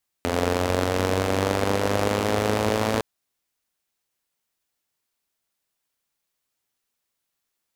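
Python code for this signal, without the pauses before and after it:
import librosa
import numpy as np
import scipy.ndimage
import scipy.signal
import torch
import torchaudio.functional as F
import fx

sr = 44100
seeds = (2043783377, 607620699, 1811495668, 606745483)

y = fx.engine_four_rev(sr, seeds[0], length_s=2.76, rpm=2600, resonances_hz=(94.0, 250.0, 450.0), end_rpm=3300)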